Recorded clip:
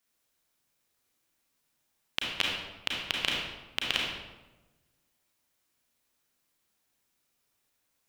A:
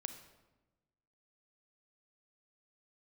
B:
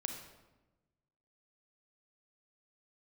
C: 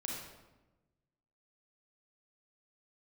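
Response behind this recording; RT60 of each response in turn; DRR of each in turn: C; 1.1, 1.1, 1.1 s; 8.0, 4.0, -2.5 dB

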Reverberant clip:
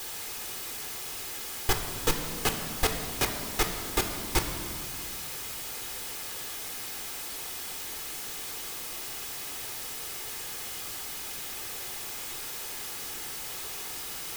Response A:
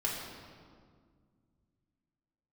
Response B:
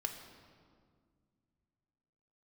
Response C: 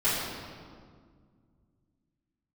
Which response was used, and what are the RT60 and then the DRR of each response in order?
B; 1.9, 1.9, 1.9 s; -4.0, 4.0, -13.5 dB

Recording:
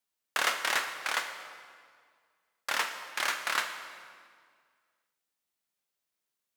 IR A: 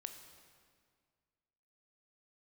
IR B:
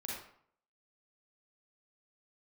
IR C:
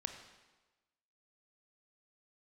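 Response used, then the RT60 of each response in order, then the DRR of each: A; 1.9, 0.60, 1.2 s; 6.0, -5.0, 5.5 dB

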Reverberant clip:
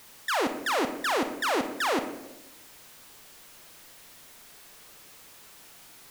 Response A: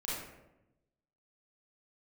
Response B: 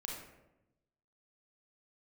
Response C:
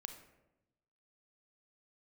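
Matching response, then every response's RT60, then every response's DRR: C; 0.95, 0.95, 0.95 s; -8.0, -1.0, 7.0 dB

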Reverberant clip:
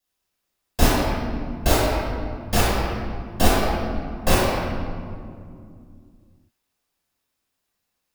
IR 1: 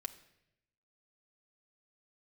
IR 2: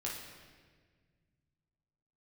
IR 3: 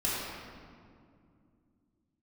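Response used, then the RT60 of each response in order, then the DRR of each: 3; 0.85, 1.6, 2.3 s; 5.5, -4.0, -8.5 dB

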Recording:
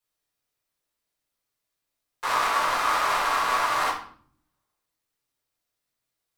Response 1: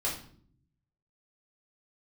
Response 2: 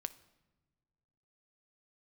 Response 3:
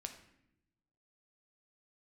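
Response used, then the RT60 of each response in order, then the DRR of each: 1; 0.55 s, not exponential, not exponential; -6.0, 13.0, 5.0 dB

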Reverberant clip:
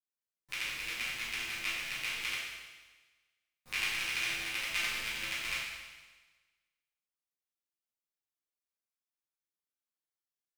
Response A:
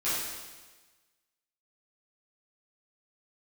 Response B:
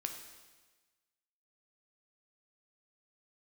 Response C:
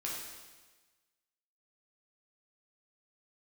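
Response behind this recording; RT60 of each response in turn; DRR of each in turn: A; 1.3, 1.3, 1.3 s; -14.0, 4.0, -4.5 dB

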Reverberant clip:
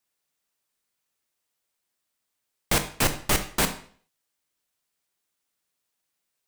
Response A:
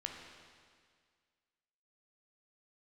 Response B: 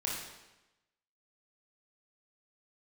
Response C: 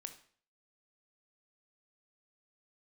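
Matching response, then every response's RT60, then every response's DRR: C; 1.9, 1.0, 0.50 s; 1.0, -4.0, 7.5 dB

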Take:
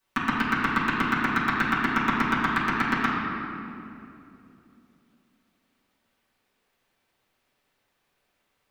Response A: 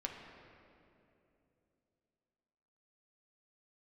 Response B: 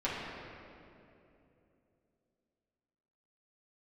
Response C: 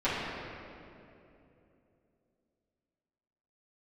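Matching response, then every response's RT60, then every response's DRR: C; 2.9, 2.9, 2.9 s; 0.0, -9.5, -14.0 dB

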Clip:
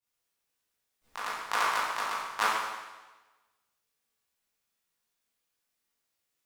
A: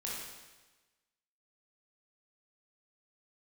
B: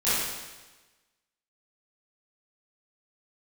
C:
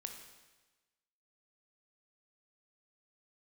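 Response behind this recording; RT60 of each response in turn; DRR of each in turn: B; 1.2, 1.2, 1.2 s; -5.5, -14.5, 4.0 dB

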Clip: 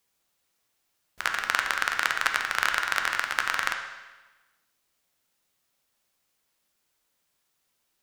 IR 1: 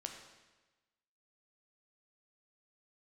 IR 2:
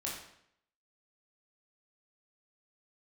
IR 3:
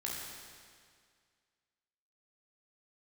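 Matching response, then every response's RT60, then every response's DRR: 1; 1.2, 0.70, 2.0 s; 3.0, -4.5, -4.5 dB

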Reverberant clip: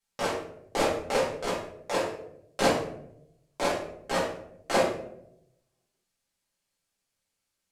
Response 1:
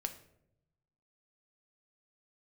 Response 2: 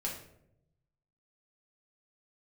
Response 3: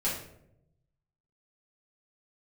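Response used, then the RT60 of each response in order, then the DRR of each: 3; 0.80, 0.75, 0.75 s; 7.0, -3.0, -8.5 dB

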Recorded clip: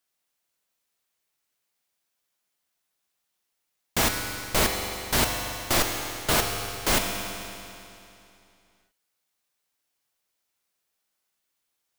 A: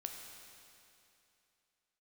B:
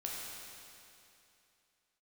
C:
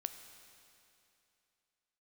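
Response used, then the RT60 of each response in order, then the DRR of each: A; 2.8, 2.7, 2.8 s; 2.5, -4.0, 8.0 dB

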